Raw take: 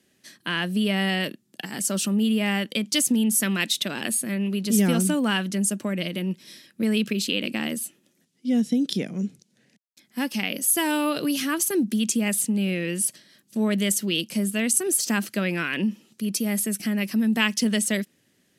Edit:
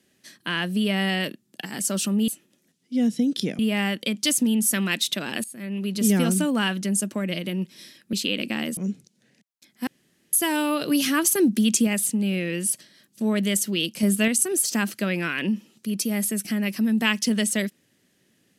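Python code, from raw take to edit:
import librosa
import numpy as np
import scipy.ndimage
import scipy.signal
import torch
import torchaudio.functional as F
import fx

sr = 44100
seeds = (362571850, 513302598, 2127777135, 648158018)

y = fx.edit(x, sr, fx.fade_in_from(start_s=4.13, length_s=0.5, floor_db=-19.0),
    fx.cut(start_s=6.82, length_s=0.35),
    fx.move(start_s=7.81, length_s=1.31, to_s=2.28),
    fx.room_tone_fill(start_s=10.22, length_s=0.46),
    fx.clip_gain(start_s=11.26, length_s=0.96, db=3.5),
    fx.clip_gain(start_s=14.38, length_s=0.25, db=4.5), tone=tone)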